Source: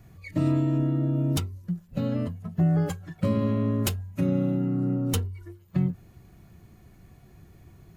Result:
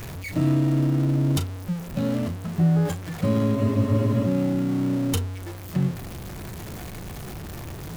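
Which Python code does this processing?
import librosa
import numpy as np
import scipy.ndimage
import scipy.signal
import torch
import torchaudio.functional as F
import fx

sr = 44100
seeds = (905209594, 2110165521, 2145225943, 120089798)

y = x + 0.5 * 10.0 ** (-31.0 / 20.0) * np.sign(x)
y = fx.doubler(y, sr, ms=36.0, db=-11.5)
y = fx.spec_freeze(y, sr, seeds[0], at_s=3.58, hold_s=0.67)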